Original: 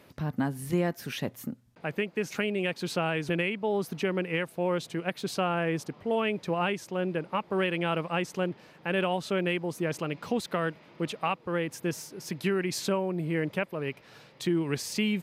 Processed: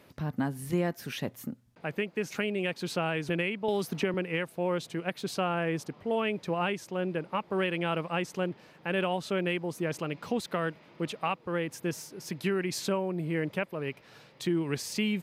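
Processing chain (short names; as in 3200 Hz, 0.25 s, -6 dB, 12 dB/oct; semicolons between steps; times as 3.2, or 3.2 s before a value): 3.68–4.14 three-band squash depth 100%; gain -1.5 dB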